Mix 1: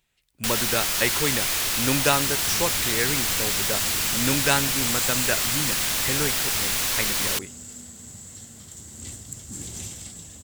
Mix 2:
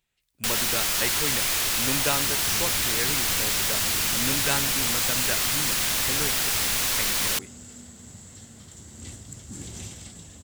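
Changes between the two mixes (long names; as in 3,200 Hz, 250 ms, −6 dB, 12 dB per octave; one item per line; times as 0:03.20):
speech −6.0 dB
second sound: add high-shelf EQ 7,700 Hz −11.5 dB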